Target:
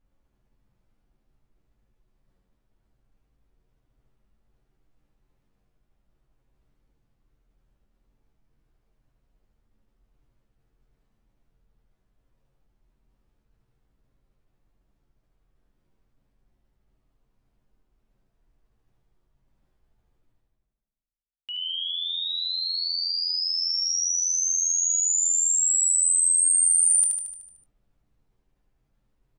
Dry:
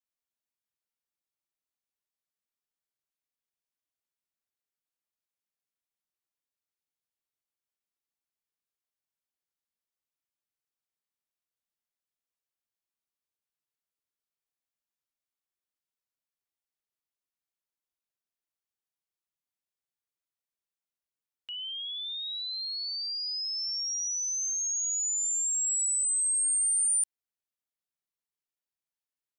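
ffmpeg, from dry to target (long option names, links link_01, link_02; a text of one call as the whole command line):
ffmpeg -i in.wav -filter_complex "[0:a]anlmdn=0.0631,areverse,acompressor=mode=upward:threshold=-38dB:ratio=2.5,areverse,asplit=2[link_01][link_02];[link_02]adelay=22,volume=-13dB[link_03];[link_01][link_03]amix=inputs=2:normalize=0,aecho=1:1:75|150|225|300|375|450|525|600:0.631|0.36|0.205|0.117|0.0666|0.038|0.0216|0.0123,volume=4.5dB" out.wav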